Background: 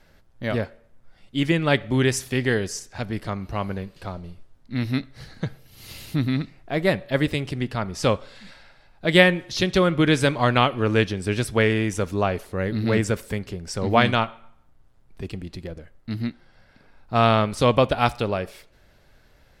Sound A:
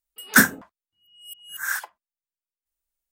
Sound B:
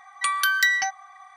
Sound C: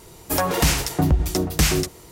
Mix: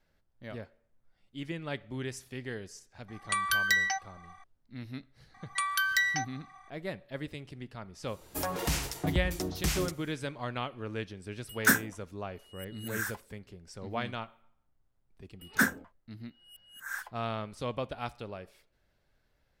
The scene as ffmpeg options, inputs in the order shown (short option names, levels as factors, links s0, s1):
-filter_complex "[2:a]asplit=2[s0][s1];[1:a]asplit=2[s2][s3];[0:a]volume=0.141[s4];[s3]highshelf=f=4400:g=-7.5[s5];[s0]atrim=end=1.36,asetpts=PTS-STARTPTS,volume=0.501,afade=t=in:d=0.004:c=hsin,afade=t=out:st=1.356:d=0.004:c=hsin,adelay=3080[s6];[s1]atrim=end=1.36,asetpts=PTS-STARTPTS,volume=0.447,afade=t=in:d=0.004:c=hsin,afade=t=out:st=1.356:d=0.004:c=hsin,adelay=5340[s7];[3:a]atrim=end=2.11,asetpts=PTS-STARTPTS,volume=0.251,afade=t=in:d=0.05,afade=t=out:st=2.06:d=0.05,adelay=8050[s8];[s2]atrim=end=3.11,asetpts=PTS-STARTPTS,volume=0.376,afade=t=in:d=0.004:c=hsin,afade=t=out:st=3.106:d=0.004:c=hsin,adelay=11310[s9];[s5]atrim=end=3.11,asetpts=PTS-STARTPTS,volume=0.335,afade=t=in:d=0.004:c=hsin,afade=t=out:st=3.106:d=0.004:c=hsin,adelay=15230[s10];[s4][s6][s7][s8][s9][s10]amix=inputs=6:normalize=0"